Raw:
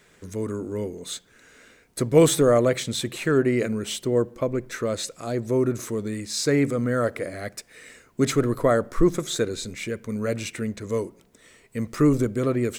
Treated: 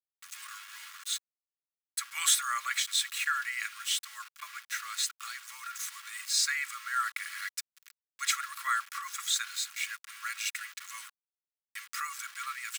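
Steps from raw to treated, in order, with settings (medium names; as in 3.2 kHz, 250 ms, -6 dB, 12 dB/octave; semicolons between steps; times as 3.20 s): small samples zeroed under -36.5 dBFS; steep high-pass 1.2 kHz 48 dB/octave; comb 3.6 ms, depth 52%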